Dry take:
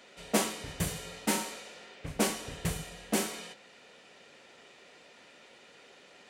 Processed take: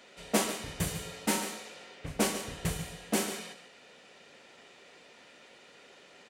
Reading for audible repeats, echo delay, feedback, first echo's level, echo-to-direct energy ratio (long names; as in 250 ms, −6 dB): 1, 143 ms, repeats not evenly spaced, −11.0 dB, −11.0 dB